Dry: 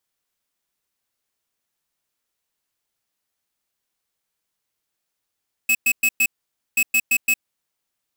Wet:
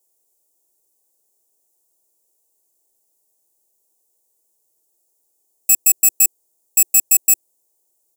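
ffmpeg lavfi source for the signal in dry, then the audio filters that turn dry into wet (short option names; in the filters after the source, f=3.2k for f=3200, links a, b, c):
-f lavfi -i "aevalsrc='0.141*(2*lt(mod(2580*t,1),0.5)-1)*clip(min(mod(mod(t,1.08),0.17),0.06-mod(mod(t,1.08),0.17))/0.005,0,1)*lt(mod(t,1.08),0.68)':d=2.16:s=44100"
-af "firequalizer=gain_entry='entry(110,0);entry(170,-7);entry(350,13);entry(890,6);entry(1300,-18);entry(7200,14)':delay=0.05:min_phase=1"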